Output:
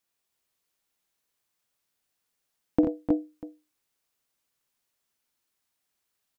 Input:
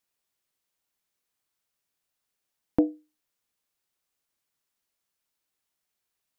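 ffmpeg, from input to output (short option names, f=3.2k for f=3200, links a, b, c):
-af "aecho=1:1:49|61|86|302|319|643:0.237|0.335|0.398|0.355|0.631|0.112"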